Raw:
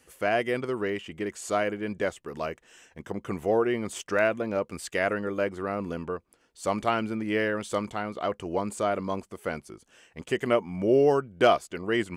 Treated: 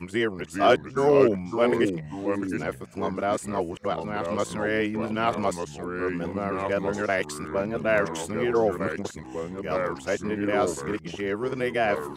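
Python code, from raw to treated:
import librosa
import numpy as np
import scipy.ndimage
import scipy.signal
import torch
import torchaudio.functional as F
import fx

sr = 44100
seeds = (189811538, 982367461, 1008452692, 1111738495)

y = x[::-1].copy()
y = fx.echo_pitch(y, sr, ms=375, semitones=-3, count=2, db_per_echo=-6.0)
y = y * 10.0 ** (1.0 / 20.0)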